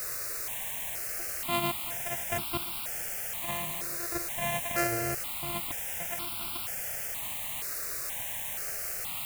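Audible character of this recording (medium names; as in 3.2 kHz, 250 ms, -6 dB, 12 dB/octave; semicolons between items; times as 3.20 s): a buzz of ramps at a fixed pitch in blocks of 128 samples; random-step tremolo, depth 100%; a quantiser's noise floor 6-bit, dither triangular; notches that jump at a steady rate 2.1 Hz 870–1800 Hz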